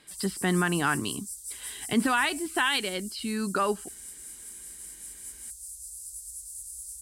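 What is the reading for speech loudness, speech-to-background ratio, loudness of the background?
-28.0 LUFS, 10.5 dB, -38.5 LUFS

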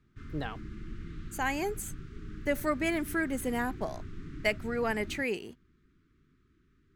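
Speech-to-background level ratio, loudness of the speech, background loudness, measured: 12.5 dB, -33.0 LUFS, -45.5 LUFS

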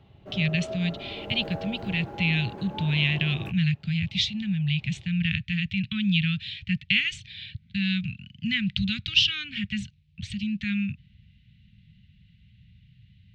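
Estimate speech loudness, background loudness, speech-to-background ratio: -26.5 LUFS, -39.5 LUFS, 13.0 dB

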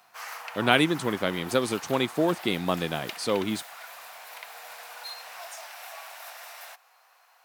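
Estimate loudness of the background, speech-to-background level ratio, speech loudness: -40.5 LUFS, 13.5 dB, -27.0 LUFS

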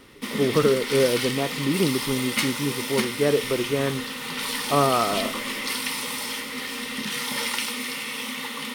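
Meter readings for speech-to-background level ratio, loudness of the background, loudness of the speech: 3.0 dB, -27.5 LUFS, -24.5 LUFS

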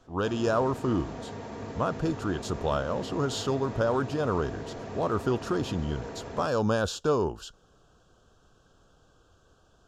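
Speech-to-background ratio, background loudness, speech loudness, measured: 10.5 dB, -40.0 LUFS, -29.5 LUFS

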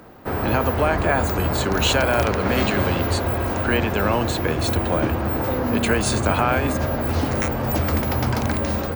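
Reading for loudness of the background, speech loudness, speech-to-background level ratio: -23.0 LUFS, -24.0 LUFS, -1.0 dB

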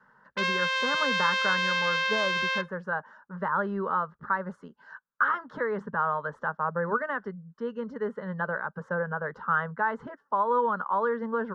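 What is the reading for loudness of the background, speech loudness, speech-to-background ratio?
-26.0 LUFS, -30.0 LUFS, -4.0 dB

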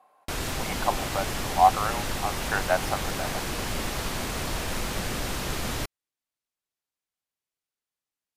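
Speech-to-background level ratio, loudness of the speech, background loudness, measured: 3.0 dB, -28.0 LUFS, -31.0 LUFS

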